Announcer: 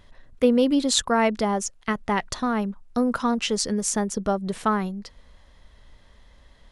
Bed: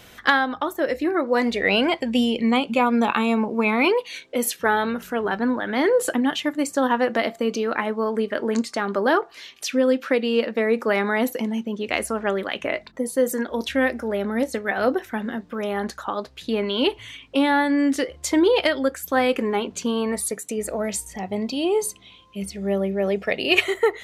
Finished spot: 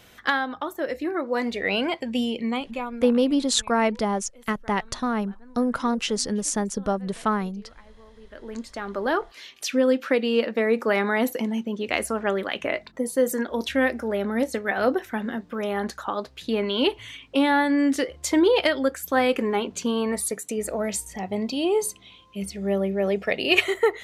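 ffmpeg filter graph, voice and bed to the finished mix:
-filter_complex "[0:a]adelay=2600,volume=-1dB[a];[1:a]volume=22dB,afade=t=out:st=2.32:d=0.86:silence=0.0707946,afade=t=in:st=8.2:d=1.45:silence=0.0446684[b];[a][b]amix=inputs=2:normalize=0"

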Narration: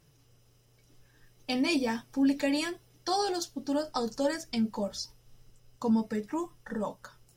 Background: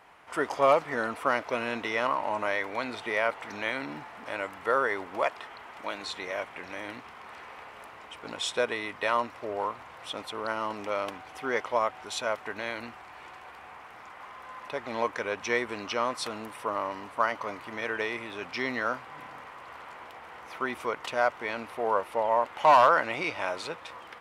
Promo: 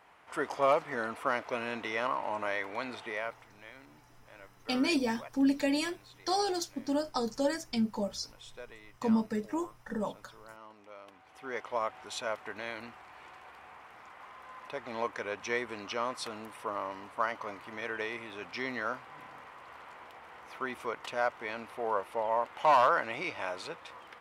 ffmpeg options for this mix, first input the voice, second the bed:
-filter_complex "[0:a]adelay=3200,volume=-1dB[a];[1:a]volume=10dB,afade=t=out:st=2.92:d=0.57:silence=0.177828,afade=t=in:st=11.05:d=0.87:silence=0.188365[b];[a][b]amix=inputs=2:normalize=0"

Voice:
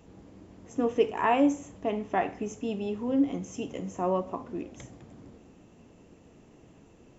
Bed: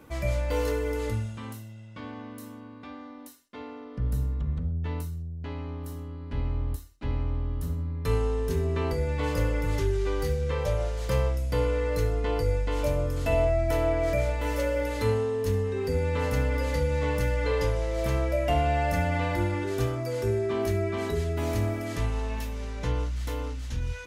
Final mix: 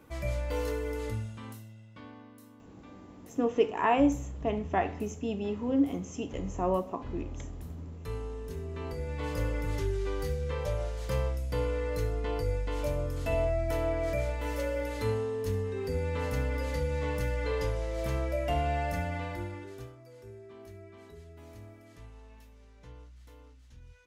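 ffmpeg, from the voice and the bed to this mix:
-filter_complex "[0:a]adelay=2600,volume=-1dB[a];[1:a]volume=1.5dB,afade=t=out:st=1.63:d=0.69:silence=0.473151,afade=t=in:st=8.7:d=0.77:silence=0.473151,afade=t=out:st=18.74:d=1.22:silence=0.149624[b];[a][b]amix=inputs=2:normalize=0"

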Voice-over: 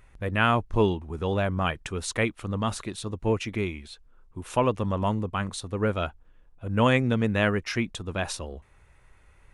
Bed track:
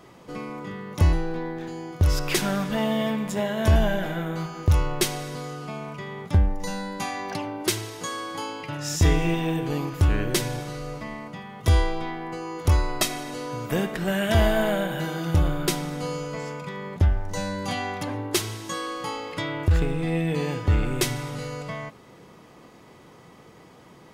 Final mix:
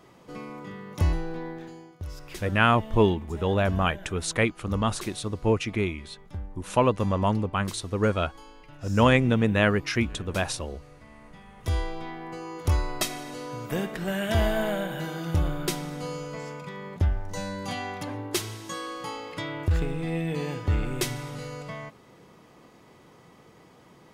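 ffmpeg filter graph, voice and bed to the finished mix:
-filter_complex "[0:a]adelay=2200,volume=2dB[a];[1:a]volume=8.5dB,afade=t=out:st=1.51:d=0.45:silence=0.237137,afade=t=in:st=11.05:d=1.33:silence=0.223872[b];[a][b]amix=inputs=2:normalize=0"

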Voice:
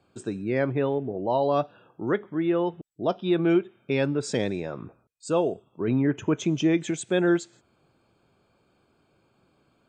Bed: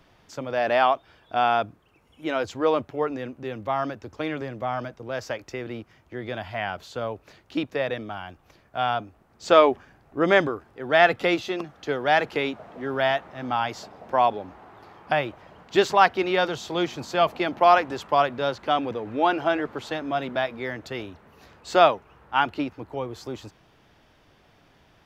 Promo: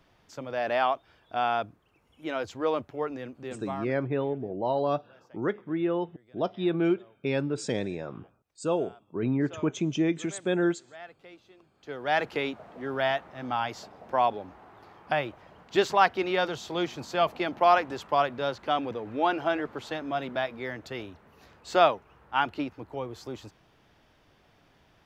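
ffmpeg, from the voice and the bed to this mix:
-filter_complex "[0:a]adelay=3350,volume=-3.5dB[a];[1:a]volume=18.5dB,afade=t=out:st=3.52:d=0.52:silence=0.0749894,afade=t=in:st=11.72:d=0.51:silence=0.0630957[b];[a][b]amix=inputs=2:normalize=0"

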